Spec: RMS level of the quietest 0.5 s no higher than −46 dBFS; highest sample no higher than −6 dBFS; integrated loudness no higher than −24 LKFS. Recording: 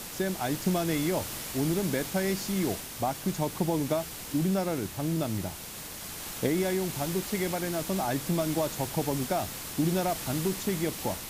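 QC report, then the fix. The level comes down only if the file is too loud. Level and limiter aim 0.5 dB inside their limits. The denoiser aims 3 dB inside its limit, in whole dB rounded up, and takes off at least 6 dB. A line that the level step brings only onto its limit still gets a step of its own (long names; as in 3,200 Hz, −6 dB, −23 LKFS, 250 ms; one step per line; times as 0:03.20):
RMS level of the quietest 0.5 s −41 dBFS: out of spec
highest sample −14.0 dBFS: in spec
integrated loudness −30.0 LKFS: in spec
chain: broadband denoise 8 dB, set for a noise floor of −41 dBFS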